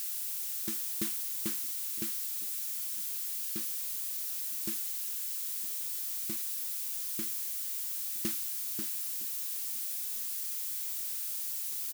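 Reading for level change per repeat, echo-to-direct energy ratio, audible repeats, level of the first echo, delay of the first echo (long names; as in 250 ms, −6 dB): −9.5 dB, −21.0 dB, 2, −21.5 dB, 961 ms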